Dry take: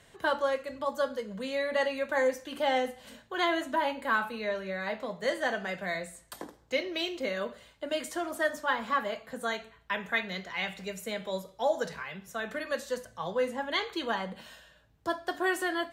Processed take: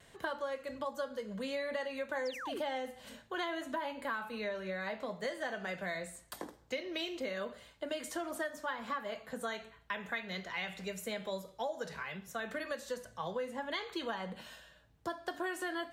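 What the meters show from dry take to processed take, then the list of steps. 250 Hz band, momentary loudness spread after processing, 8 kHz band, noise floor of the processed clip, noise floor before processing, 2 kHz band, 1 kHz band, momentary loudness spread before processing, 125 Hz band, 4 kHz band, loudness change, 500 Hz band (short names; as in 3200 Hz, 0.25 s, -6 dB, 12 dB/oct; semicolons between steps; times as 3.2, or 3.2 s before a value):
-5.5 dB, 6 LU, -4.0 dB, -62 dBFS, -60 dBFS, -7.5 dB, -8.0 dB, 9 LU, -3.5 dB, -7.0 dB, -7.5 dB, -7.5 dB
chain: painted sound fall, 2.25–2.6, 290–6100 Hz -37 dBFS; vibrato 0.82 Hz 20 cents; compressor 6:1, threshold -33 dBFS, peak gain reduction 11 dB; gain -1.5 dB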